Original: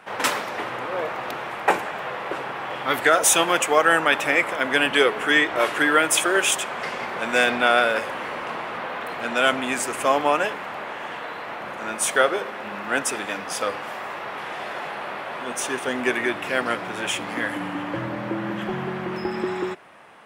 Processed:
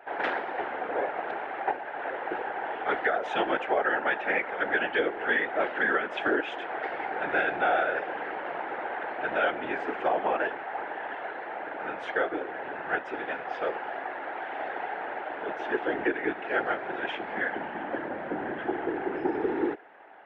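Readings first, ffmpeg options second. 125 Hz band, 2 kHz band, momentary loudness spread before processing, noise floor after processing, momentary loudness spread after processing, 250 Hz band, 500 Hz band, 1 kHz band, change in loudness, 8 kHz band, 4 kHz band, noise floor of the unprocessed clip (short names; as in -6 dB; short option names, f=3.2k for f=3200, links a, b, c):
-13.0 dB, -6.5 dB, 14 LU, -38 dBFS, 9 LU, -6.0 dB, -5.5 dB, -5.5 dB, -7.0 dB, under -40 dB, -15.5 dB, -34 dBFS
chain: -af "highpass=f=260:w=0.5412,highpass=f=260:w=1.3066,equalizer=f=270:t=q:w=4:g=-5,equalizer=f=390:t=q:w=4:g=8,equalizer=f=780:t=q:w=4:g=10,equalizer=f=1.1k:t=q:w=4:g=-9,equalizer=f=1.6k:t=q:w=4:g=6,equalizer=f=2.5k:t=q:w=4:g=-4,lowpass=f=2.8k:w=0.5412,lowpass=f=2.8k:w=1.3066,afftfilt=real='hypot(re,im)*cos(2*PI*random(0))':imag='hypot(re,im)*sin(2*PI*random(1))':win_size=512:overlap=0.75,alimiter=limit=-15.5dB:level=0:latency=1:release=345"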